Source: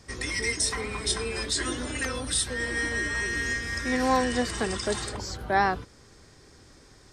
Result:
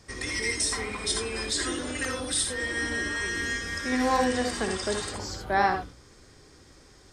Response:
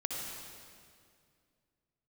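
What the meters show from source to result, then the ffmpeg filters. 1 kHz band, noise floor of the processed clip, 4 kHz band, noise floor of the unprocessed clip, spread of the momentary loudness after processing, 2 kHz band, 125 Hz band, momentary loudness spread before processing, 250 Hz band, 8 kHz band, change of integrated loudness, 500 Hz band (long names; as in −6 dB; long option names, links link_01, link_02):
+0.5 dB, −54 dBFS, 0.0 dB, −54 dBFS, 6 LU, −1.0 dB, −3.0 dB, 6 LU, 0.0 dB, 0.0 dB, −0.5 dB, 0.0 dB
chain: -filter_complex "[0:a]bandreject=frequency=60:width_type=h:width=6,bandreject=frequency=120:width_type=h:width=6,bandreject=frequency=180:width_type=h:width=6,bandreject=frequency=240:width_type=h:width=6[link_01];[1:a]atrim=start_sample=2205,atrim=end_sample=3969[link_02];[link_01][link_02]afir=irnorm=-1:irlink=0"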